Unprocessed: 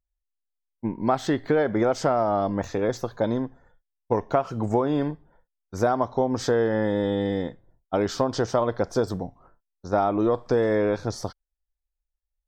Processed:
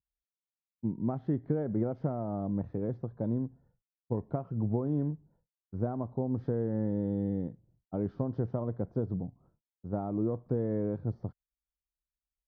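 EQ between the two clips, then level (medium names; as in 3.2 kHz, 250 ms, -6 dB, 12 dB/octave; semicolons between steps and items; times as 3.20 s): band-pass filter 140 Hz, Q 1.2; distance through air 250 m; 0.0 dB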